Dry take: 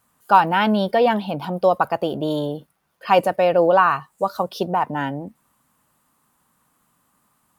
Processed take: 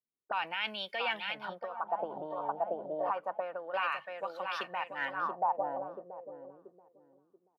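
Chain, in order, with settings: bell 1800 Hz -3 dB 2 oct; feedback echo 0.682 s, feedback 44%, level -9 dB; 1.54–3.74 compressor 4:1, threshold -26 dBFS, peak gain reduction 13 dB; dynamic EQ 540 Hz, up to +3 dB, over -34 dBFS, Q 8; auto-wah 370–2400 Hz, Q 3.6, up, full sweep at -18.5 dBFS; limiter -27.5 dBFS, peak gain reduction 11 dB; three-band expander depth 70%; gain +4 dB

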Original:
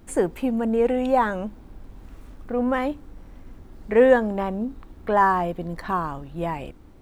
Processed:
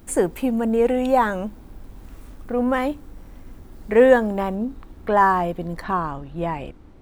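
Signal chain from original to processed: high shelf 7700 Hz +9 dB, from 4.55 s +2.5 dB, from 5.84 s -9.5 dB; gain +2 dB

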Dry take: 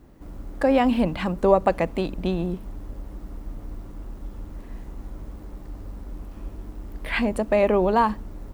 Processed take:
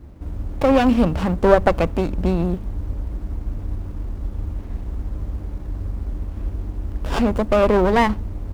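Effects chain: bell 75 Hz +13 dB 1.1 oct; running maximum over 17 samples; gain +4.5 dB

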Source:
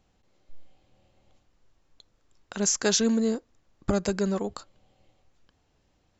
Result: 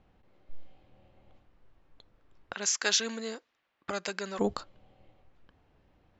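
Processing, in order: low-pass opened by the level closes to 2500 Hz, open at -21 dBFS; 2.54–4.39 band-pass 2500 Hz, Q 0.84; gain +3.5 dB

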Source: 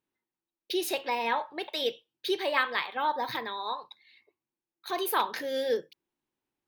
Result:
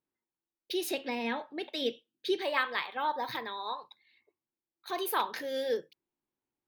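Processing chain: 0.91–2.42 fifteen-band EQ 100 Hz -5 dB, 250 Hz +12 dB, 1000 Hz -9 dB, 16000 Hz -11 dB; mismatched tape noise reduction decoder only; gain -3 dB

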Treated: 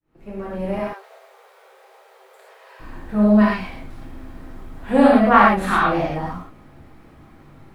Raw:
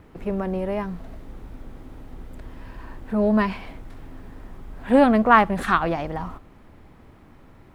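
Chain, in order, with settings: opening faded in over 0.72 s; 0.79–2.8 Chebyshev high-pass 390 Hz, order 10; non-linear reverb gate 0.15 s flat, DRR -6 dB; gain -3.5 dB

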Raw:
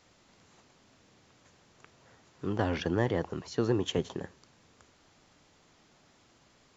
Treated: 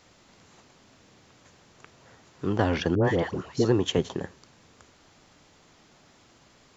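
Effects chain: 2.95–3.65 dispersion highs, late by 96 ms, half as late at 960 Hz; gain +5.5 dB

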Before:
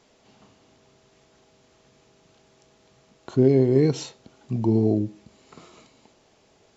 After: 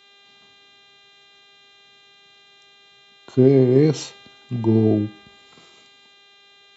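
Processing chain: buzz 400 Hz, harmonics 10, -49 dBFS 0 dB/oct; three-band expander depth 40%

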